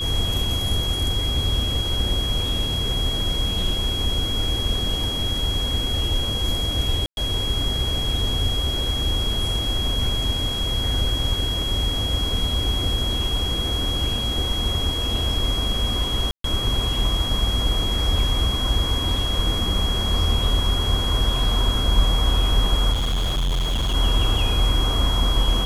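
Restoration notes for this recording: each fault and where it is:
whine 3.3 kHz -25 dBFS
7.06–7.17 s: dropout 111 ms
16.31–16.44 s: dropout 133 ms
22.92–23.95 s: clipped -19 dBFS

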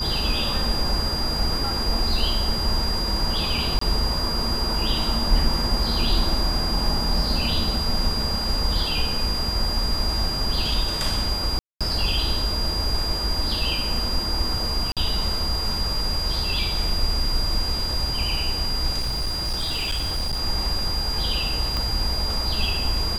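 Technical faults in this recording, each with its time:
whine 4.8 kHz -26 dBFS
3.79–3.81 s: dropout 24 ms
11.59–11.81 s: dropout 216 ms
14.92–14.97 s: dropout 47 ms
18.99–20.41 s: clipped -21 dBFS
21.77 s: pop -12 dBFS

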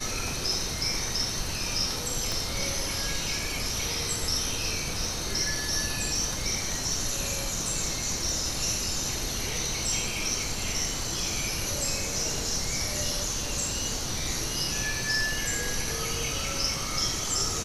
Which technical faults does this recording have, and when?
2.32 s: pop

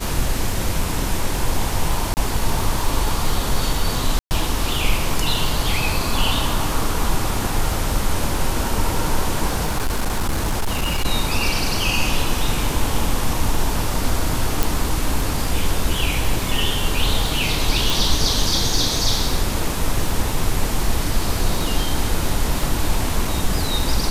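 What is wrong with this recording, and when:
crackle 32 per s -24 dBFS
2.14–2.17 s: dropout 29 ms
4.19–4.31 s: dropout 119 ms
9.64–11.06 s: clipped -16 dBFS
14.63 s: pop
17.90 s: pop

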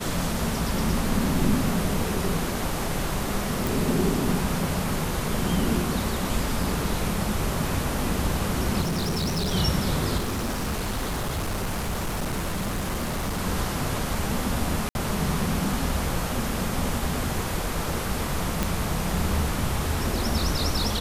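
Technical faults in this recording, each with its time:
3.67 s: pop
8.81–9.55 s: clipped -23 dBFS
10.17–13.41 s: clipped -24 dBFS
14.89–14.95 s: dropout 61 ms
18.63 s: pop

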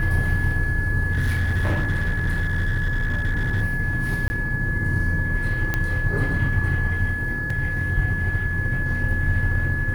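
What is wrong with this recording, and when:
whine 1.7 kHz -26 dBFS
1.12–3.62 s: clipped -17.5 dBFS
4.28–4.30 s: dropout 20 ms
5.74 s: pop -9 dBFS
7.50 s: dropout 3.7 ms

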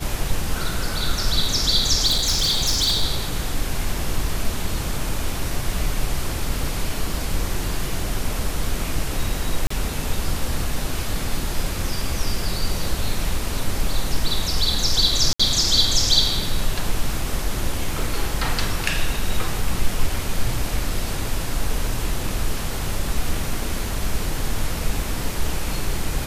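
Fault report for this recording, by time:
2.06–3.03 s: clipped -15.5 dBFS
9.67–9.70 s: dropout 34 ms
15.33–15.39 s: dropout 65 ms

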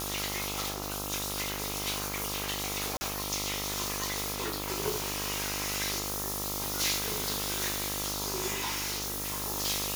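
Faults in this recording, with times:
buzz 50 Hz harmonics 27 -39 dBFS
2.97–3.01 s: dropout 40 ms
8.53–9.43 s: clipped -29 dBFS

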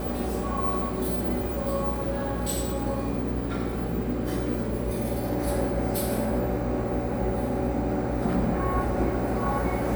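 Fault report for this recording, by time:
buzz 60 Hz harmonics 10 -32 dBFS

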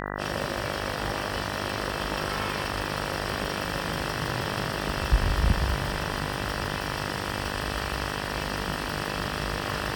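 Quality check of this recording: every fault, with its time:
buzz 50 Hz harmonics 39 -33 dBFS

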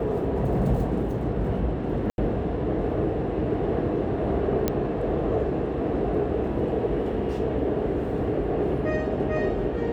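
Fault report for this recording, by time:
2.10–2.18 s: dropout 81 ms
4.68 s: pop -9 dBFS

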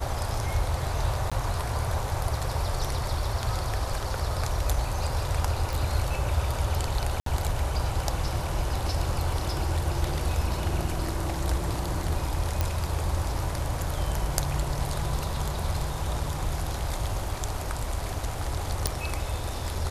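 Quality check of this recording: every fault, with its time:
1.30–1.32 s: dropout 16 ms
5.73 s: pop
7.20–7.26 s: dropout 63 ms
12.61 s: pop
18.87 s: pop

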